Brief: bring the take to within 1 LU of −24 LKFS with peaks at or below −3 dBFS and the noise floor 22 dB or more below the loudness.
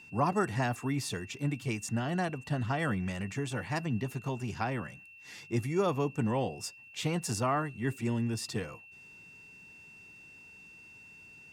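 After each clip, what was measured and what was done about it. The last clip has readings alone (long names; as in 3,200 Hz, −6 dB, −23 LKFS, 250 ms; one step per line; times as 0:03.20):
interfering tone 2,700 Hz; level of the tone −51 dBFS; integrated loudness −33.0 LKFS; sample peak −16.0 dBFS; target loudness −24.0 LKFS
→ notch filter 2,700 Hz, Q 30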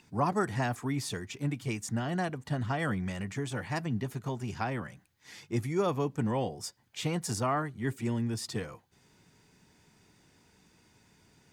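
interfering tone none found; integrated loudness −33.5 LKFS; sample peak −16.0 dBFS; target loudness −24.0 LKFS
→ level +9.5 dB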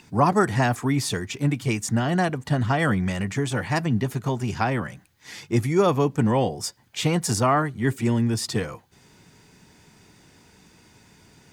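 integrated loudness −24.0 LKFS; sample peak −6.5 dBFS; background noise floor −57 dBFS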